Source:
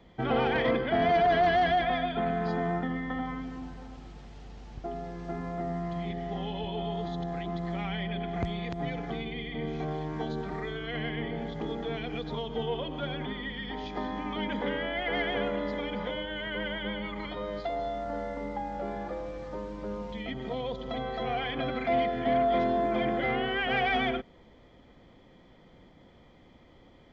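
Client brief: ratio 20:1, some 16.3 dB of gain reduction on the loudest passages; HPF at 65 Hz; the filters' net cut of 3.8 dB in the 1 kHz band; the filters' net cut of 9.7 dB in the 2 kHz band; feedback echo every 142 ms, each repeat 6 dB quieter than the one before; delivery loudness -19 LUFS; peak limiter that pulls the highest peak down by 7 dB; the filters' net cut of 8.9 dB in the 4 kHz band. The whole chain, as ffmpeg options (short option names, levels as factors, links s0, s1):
-af "highpass=65,equalizer=f=1000:t=o:g=-5,equalizer=f=2000:t=o:g=-8.5,equalizer=f=4000:t=o:g=-8,acompressor=threshold=0.01:ratio=20,alimiter=level_in=4.73:limit=0.0631:level=0:latency=1,volume=0.211,aecho=1:1:142|284|426|568|710|852:0.501|0.251|0.125|0.0626|0.0313|0.0157,volume=21.1"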